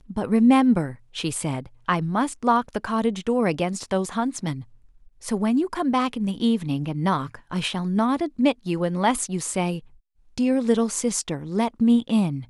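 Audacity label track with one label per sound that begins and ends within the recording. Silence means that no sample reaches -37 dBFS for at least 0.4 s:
5.230000	9.790000	sound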